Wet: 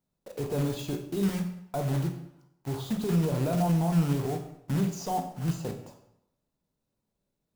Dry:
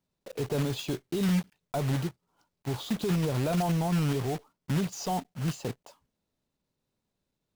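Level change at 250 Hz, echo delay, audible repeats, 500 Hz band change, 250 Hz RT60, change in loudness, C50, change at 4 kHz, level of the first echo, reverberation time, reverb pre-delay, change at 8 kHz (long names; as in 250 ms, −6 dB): +1.0 dB, no echo audible, no echo audible, +0.5 dB, 0.80 s, +1.0 dB, 8.5 dB, −4.5 dB, no echo audible, 0.80 s, 20 ms, −1.5 dB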